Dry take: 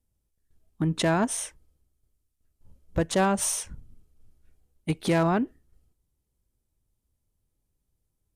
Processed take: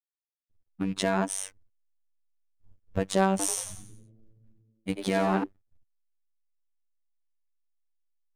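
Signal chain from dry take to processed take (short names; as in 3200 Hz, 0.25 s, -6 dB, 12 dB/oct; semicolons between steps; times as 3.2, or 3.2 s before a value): rattling part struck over -31 dBFS, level -36 dBFS; backlash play -50 dBFS; robotiser 96.1 Hz; 3.3–5.44 frequency-shifting echo 90 ms, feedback 41%, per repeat +110 Hz, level -8 dB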